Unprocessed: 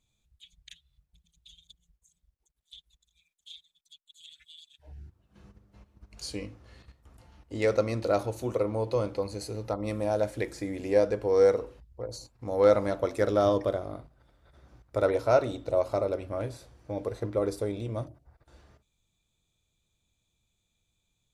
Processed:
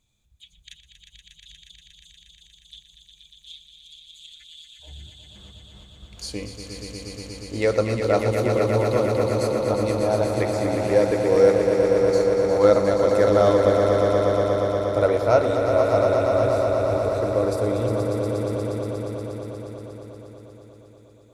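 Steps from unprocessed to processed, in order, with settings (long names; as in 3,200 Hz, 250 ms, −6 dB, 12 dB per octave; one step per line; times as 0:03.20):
on a send: echo that builds up and dies away 119 ms, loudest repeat 5, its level −7 dB
on the sum: level +4.5 dB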